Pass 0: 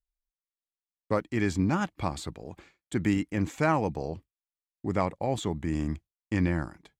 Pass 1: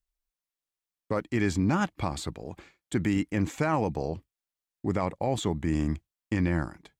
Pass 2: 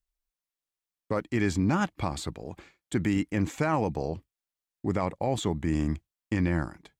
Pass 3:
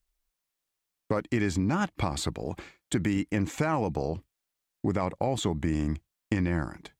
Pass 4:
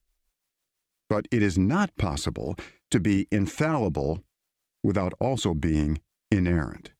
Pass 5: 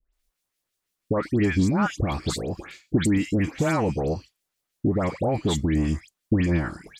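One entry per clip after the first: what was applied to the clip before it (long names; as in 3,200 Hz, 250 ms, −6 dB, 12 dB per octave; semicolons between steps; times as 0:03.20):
brickwall limiter −18.5 dBFS, peak gain reduction 6.5 dB; level +2.5 dB
no processing that can be heard
downward compressor 3 to 1, threshold −32 dBFS, peak gain reduction 9 dB; level +6.5 dB
rotating-speaker cabinet horn 6 Hz; level +5.5 dB
all-pass dispersion highs, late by 134 ms, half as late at 1,900 Hz; level +1.5 dB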